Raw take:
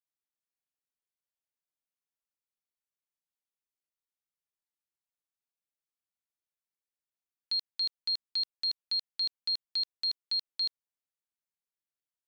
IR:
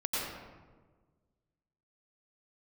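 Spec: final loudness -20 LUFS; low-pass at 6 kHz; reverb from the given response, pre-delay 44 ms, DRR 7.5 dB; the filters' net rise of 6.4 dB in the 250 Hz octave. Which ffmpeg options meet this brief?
-filter_complex "[0:a]lowpass=6000,equalizer=f=250:t=o:g=8,asplit=2[s0][s1];[1:a]atrim=start_sample=2205,adelay=44[s2];[s1][s2]afir=irnorm=-1:irlink=0,volume=0.2[s3];[s0][s3]amix=inputs=2:normalize=0,volume=3.55"

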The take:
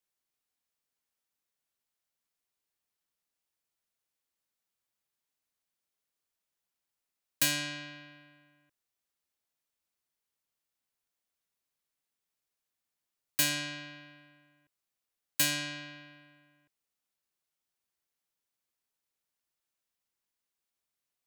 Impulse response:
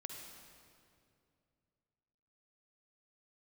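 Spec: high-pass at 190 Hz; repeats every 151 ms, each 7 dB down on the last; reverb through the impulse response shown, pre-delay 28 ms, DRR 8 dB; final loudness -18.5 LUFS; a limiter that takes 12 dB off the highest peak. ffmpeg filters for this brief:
-filter_complex "[0:a]highpass=190,alimiter=level_in=1.19:limit=0.0631:level=0:latency=1,volume=0.841,aecho=1:1:151|302|453|604|755:0.447|0.201|0.0905|0.0407|0.0183,asplit=2[s0][s1];[1:a]atrim=start_sample=2205,adelay=28[s2];[s1][s2]afir=irnorm=-1:irlink=0,volume=0.562[s3];[s0][s3]amix=inputs=2:normalize=0,volume=7.94"

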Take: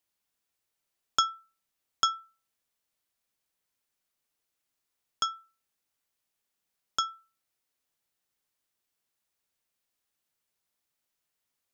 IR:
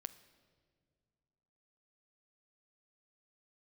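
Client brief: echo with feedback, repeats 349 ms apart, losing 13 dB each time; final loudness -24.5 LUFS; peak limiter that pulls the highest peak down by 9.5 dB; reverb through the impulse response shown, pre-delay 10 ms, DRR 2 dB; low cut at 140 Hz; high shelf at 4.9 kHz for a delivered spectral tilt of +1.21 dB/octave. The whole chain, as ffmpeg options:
-filter_complex "[0:a]highpass=140,highshelf=f=4900:g=-5.5,alimiter=limit=0.1:level=0:latency=1,aecho=1:1:349|698|1047:0.224|0.0493|0.0108,asplit=2[s0][s1];[1:a]atrim=start_sample=2205,adelay=10[s2];[s1][s2]afir=irnorm=-1:irlink=0,volume=1.26[s3];[s0][s3]amix=inputs=2:normalize=0,volume=3.98"

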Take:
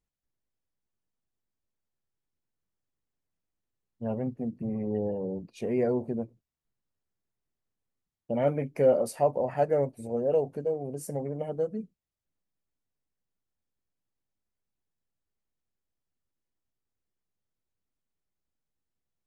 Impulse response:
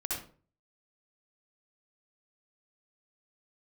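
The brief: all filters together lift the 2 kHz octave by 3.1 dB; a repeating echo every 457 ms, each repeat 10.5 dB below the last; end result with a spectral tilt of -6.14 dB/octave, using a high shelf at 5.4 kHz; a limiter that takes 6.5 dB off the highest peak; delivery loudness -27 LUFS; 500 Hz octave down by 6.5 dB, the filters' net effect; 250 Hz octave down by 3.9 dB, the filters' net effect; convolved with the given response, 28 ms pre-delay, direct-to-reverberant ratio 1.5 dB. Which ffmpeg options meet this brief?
-filter_complex "[0:a]equalizer=f=250:t=o:g=-3,equalizer=f=500:t=o:g=-7,equalizer=f=2000:t=o:g=5,highshelf=f=5400:g=-6,alimiter=limit=0.0668:level=0:latency=1,aecho=1:1:457|914|1371:0.299|0.0896|0.0269,asplit=2[s0][s1];[1:a]atrim=start_sample=2205,adelay=28[s2];[s1][s2]afir=irnorm=-1:irlink=0,volume=0.562[s3];[s0][s3]amix=inputs=2:normalize=0,volume=2.24"

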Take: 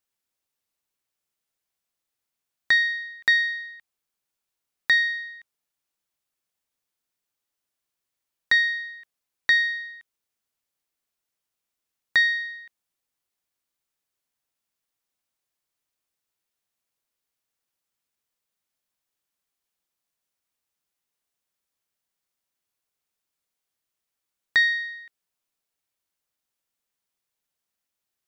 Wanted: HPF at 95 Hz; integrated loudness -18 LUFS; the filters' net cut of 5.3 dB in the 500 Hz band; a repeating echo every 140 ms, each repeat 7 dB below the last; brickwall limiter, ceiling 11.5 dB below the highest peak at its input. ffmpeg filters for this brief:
-af "highpass=95,equalizer=f=500:t=o:g=-7,alimiter=limit=0.0794:level=0:latency=1,aecho=1:1:140|280|420|560|700:0.447|0.201|0.0905|0.0407|0.0183,volume=3.16"

